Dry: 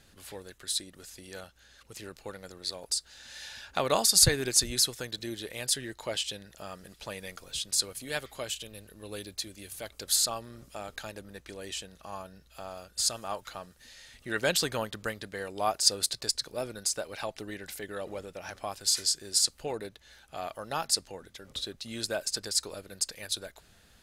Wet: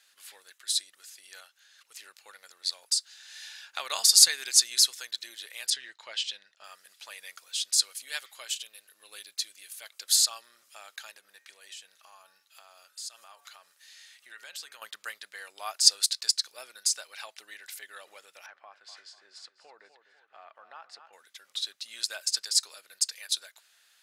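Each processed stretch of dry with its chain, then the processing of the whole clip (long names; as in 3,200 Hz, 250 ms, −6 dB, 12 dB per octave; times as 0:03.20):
0:05.70–0:06.64: low-pass filter 4,800 Hz + downward expander −51 dBFS + parametric band 140 Hz +7 dB 1.1 octaves
0:11.12–0:14.82: high-pass filter 46 Hz + hum removal 143.3 Hz, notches 18 + downward compressor 3 to 1, threshold −42 dBFS
0:18.46–0:21.13: low-pass filter 1,500 Hz + repeating echo 247 ms, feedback 43%, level −14 dB + downward compressor 2 to 1, threshold −37 dBFS
whole clip: high-pass filter 1,400 Hz 12 dB per octave; dynamic equaliser 5,300 Hz, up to +5 dB, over −41 dBFS, Q 0.8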